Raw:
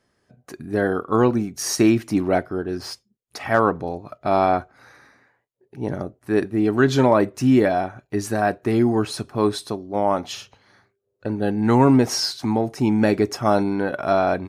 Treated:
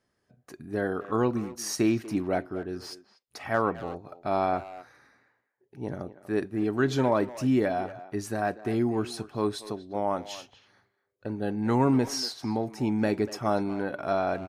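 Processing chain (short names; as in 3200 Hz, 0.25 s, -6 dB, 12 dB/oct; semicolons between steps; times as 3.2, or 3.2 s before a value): speakerphone echo 0.24 s, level -14 dB; gain -8 dB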